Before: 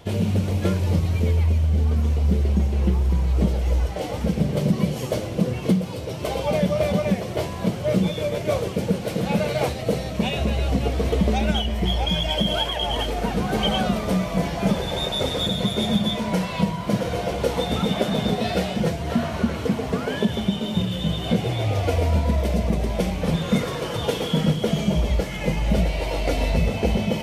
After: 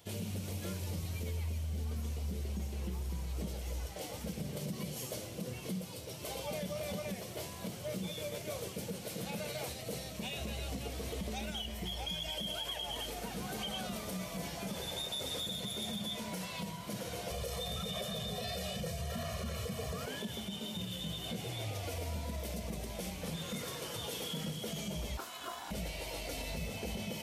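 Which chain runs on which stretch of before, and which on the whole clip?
17.3–20.06 low shelf 120 Hz +7.5 dB + comb 1.7 ms, depth 100%
25.17–25.71 HPF 72 Hz 24 dB/oct + ring modulator 860 Hz
whole clip: HPF 56 Hz; pre-emphasis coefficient 0.8; limiter -27.5 dBFS; gain -2.5 dB

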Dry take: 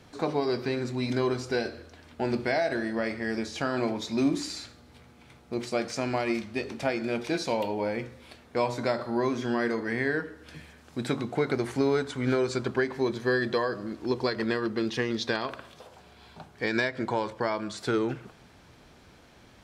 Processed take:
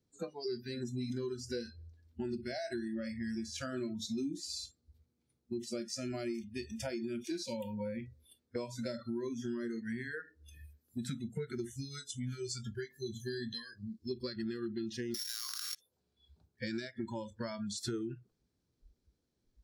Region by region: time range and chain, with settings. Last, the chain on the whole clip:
11.69–14.11 bell 720 Hz -12.5 dB 2.6 oct + doubler 21 ms -11 dB
15.14–15.75 sample sorter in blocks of 8 samples + HPF 1200 Hz + fast leveller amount 100%
whole clip: spectral noise reduction 29 dB; band shelf 1400 Hz -11.5 dB 2.7 oct; compressor 6:1, threshold -40 dBFS; gain +4 dB

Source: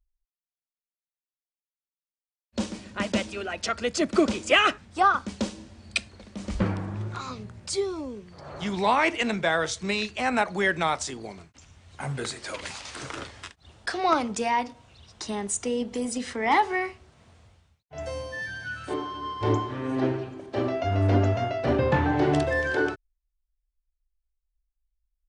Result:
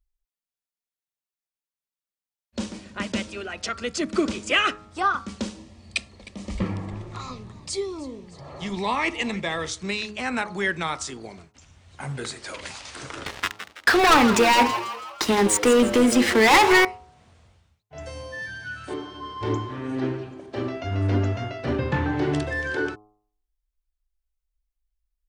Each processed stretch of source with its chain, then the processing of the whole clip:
5.58–9.69 Butterworth band-stop 1500 Hz, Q 5.4 + frequency-shifting echo 0.309 s, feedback 59%, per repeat -130 Hz, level -18.5 dB
13.26–16.85 tone controls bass -7 dB, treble -12 dB + sample leveller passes 5 + frequency-shifting echo 0.164 s, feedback 46%, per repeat +110 Hz, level -11.5 dB
whole clip: de-hum 105 Hz, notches 13; dynamic EQ 670 Hz, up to -7 dB, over -39 dBFS, Q 1.8

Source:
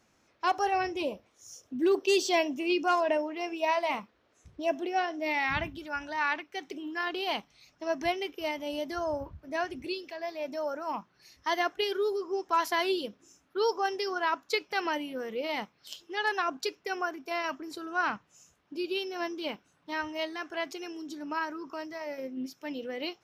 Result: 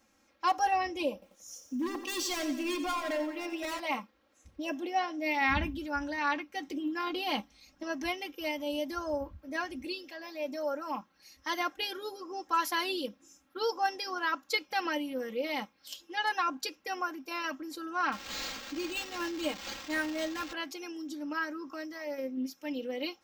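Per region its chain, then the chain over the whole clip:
1.13–3.8 hard clip -29 dBFS + lo-fi delay 89 ms, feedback 55%, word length 11-bit, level -10 dB
5.41–7.83 low shelf 340 Hz +8.5 dB + doubler 14 ms -14 dB
18.12–20.53 switching spikes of -31 dBFS + comb 6.5 ms, depth 57% + decimation joined by straight lines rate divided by 4×
whole clip: high shelf 10000 Hz +8 dB; comb 3.7 ms, depth 86%; gain -3.5 dB

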